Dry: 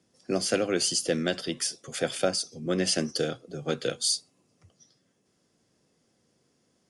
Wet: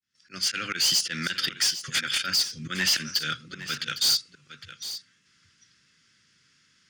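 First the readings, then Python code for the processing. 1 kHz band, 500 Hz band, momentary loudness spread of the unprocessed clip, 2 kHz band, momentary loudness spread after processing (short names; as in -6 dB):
+1.5 dB, -19.0 dB, 7 LU, +7.0 dB, 13 LU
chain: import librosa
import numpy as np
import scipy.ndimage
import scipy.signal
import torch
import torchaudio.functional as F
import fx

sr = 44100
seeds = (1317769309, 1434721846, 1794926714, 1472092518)

p1 = fx.fade_in_head(x, sr, length_s=0.85)
p2 = scipy.signal.sosfilt(scipy.signal.butter(2, 4800.0, 'lowpass', fs=sr, output='sos'), p1)
p3 = fx.auto_swell(p2, sr, attack_ms=133.0)
p4 = fx.level_steps(p3, sr, step_db=20)
p5 = p3 + (p4 * 10.0 ** (2.0 / 20.0))
p6 = fx.curve_eq(p5, sr, hz=(150.0, 760.0, 1400.0), db=(0, -19, 13))
p7 = 10.0 ** (-16.5 / 20.0) * np.tanh(p6 / 10.0 ** (-16.5 / 20.0))
p8 = p7 + fx.echo_single(p7, sr, ms=808, db=-13.0, dry=0)
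y = p8 * 10.0 ** (-1.5 / 20.0)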